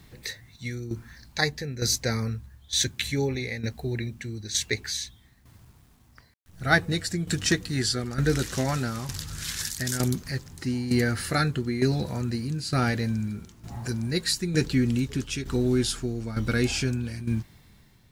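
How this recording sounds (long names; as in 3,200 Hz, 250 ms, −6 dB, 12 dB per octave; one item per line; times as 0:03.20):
a quantiser's noise floor 10 bits, dither none
tremolo saw down 1.1 Hz, depth 70%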